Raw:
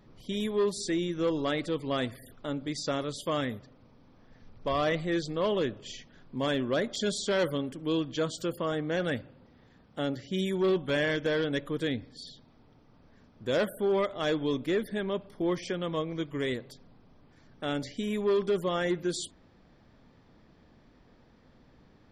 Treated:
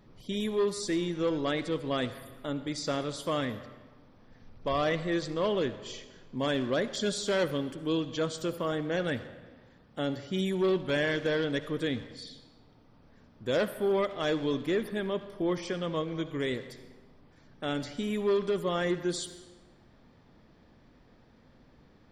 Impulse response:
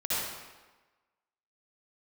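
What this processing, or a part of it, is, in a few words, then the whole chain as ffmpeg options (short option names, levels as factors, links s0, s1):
saturated reverb return: -filter_complex "[0:a]asplit=2[s0][s1];[1:a]atrim=start_sample=2205[s2];[s1][s2]afir=irnorm=-1:irlink=0,asoftclip=type=tanh:threshold=0.0891,volume=0.133[s3];[s0][s3]amix=inputs=2:normalize=0,volume=0.891"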